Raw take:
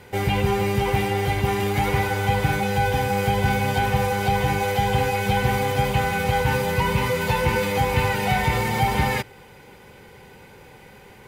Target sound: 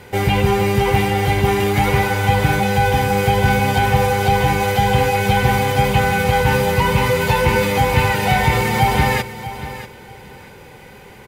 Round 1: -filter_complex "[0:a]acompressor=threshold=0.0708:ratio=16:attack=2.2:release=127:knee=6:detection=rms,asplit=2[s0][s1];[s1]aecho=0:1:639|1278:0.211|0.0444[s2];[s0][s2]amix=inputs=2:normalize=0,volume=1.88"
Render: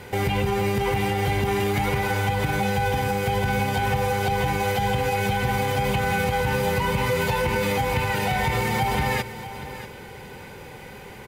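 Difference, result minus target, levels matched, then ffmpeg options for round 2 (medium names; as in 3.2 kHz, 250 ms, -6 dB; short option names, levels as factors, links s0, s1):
compression: peak gain reduction +11.5 dB
-filter_complex "[0:a]asplit=2[s0][s1];[s1]aecho=0:1:639|1278:0.211|0.0444[s2];[s0][s2]amix=inputs=2:normalize=0,volume=1.88"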